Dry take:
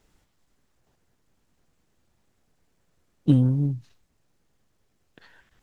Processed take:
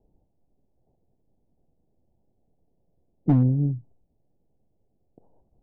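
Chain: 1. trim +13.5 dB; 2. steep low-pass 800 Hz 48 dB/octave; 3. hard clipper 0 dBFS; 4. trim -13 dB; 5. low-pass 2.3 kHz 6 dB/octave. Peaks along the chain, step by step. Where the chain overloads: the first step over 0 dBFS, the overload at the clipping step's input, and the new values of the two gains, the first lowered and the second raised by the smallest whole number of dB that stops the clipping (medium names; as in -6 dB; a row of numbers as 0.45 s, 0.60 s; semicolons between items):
+6.5 dBFS, +6.5 dBFS, 0.0 dBFS, -13.0 dBFS, -13.0 dBFS; step 1, 6.5 dB; step 1 +6.5 dB, step 4 -6 dB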